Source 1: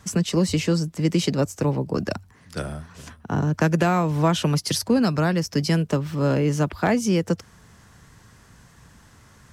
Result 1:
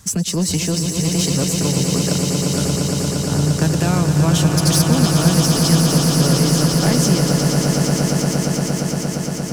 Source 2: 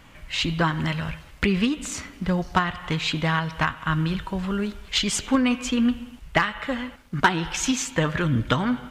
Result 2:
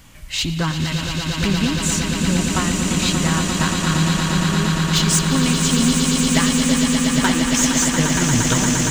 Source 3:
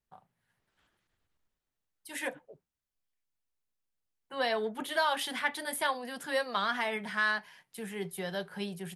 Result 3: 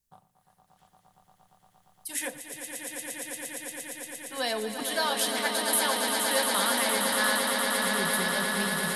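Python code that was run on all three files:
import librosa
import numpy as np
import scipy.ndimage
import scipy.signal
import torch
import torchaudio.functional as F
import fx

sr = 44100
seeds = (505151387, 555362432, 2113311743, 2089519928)

y = fx.bass_treble(x, sr, bass_db=6, treble_db=14)
y = 10.0 ** (-11.5 / 20.0) * np.tanh(y / 10.0 ** (-11.5 / 20.0))
y = fx.echo_swell(y, sr, ms=116, loudest=8, wet_db=-7.5)
y = y * 10.0 ** (-1.0 / 20.0)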